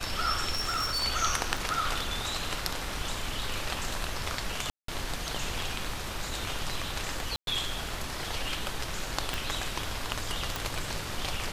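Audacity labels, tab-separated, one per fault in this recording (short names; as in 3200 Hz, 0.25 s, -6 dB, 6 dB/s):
0.500000	1.050000	clipped -26 dBFS
1.570000	1.570000	gap 2.4 ms
4.700000	4.880000	gap 0.183 s
7.360000	7.470000	gap 0.112 s
9.340000	9.340000	pop
10.560000	10.560000	pop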